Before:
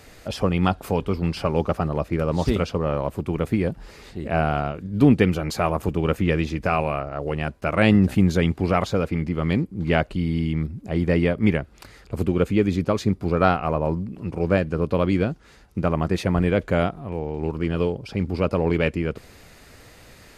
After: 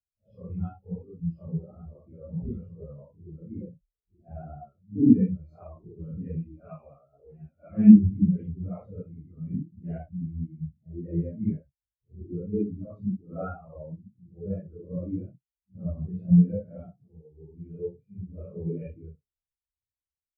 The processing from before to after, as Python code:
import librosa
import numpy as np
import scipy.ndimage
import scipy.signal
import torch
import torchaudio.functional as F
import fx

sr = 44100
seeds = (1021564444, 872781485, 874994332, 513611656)

y = fx.phase_scramble(x, sr, seeds[0], window_ms=200)
y = fx.low_shelf(y, sr, hz=190.0, db=3.0)
y = fx.spectral_expand(y, sr, expansion=2.5)